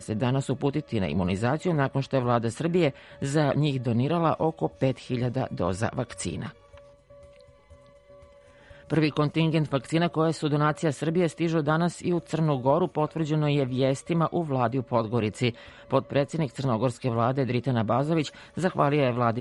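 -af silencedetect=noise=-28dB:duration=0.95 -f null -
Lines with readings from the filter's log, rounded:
silence_start: 6.47
silence_end: 8.90 | silence_duration: 2.43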